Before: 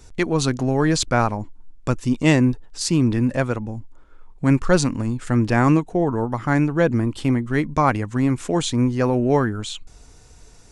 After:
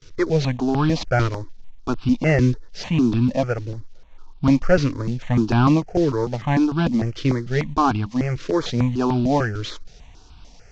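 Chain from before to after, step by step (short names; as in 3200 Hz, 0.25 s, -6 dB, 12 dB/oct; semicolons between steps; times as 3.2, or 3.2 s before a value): CVSD 32 kbps; gate with hold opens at -40 dBFS; step phaser 6.7 Hz 210–1900 Hz; gain +3.5 dB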